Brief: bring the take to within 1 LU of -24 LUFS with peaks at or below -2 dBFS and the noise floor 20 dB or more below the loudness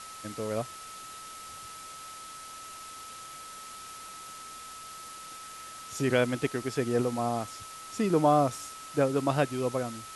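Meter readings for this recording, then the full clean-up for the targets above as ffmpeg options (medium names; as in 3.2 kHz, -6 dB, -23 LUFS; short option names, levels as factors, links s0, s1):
steady tone 1.3 kHz; tone level -44 dBFS; noise floor -45 dBFS; noise floor target -50 dBFS; loudness -29.5 LUFS; peak level -11.0 dBFS; loudness target -24.0 LUFS
-> -af "bandreject=f=1300:w=30"
-af "afftdn=nr=6:nf=-45"
-af "volume=1.88"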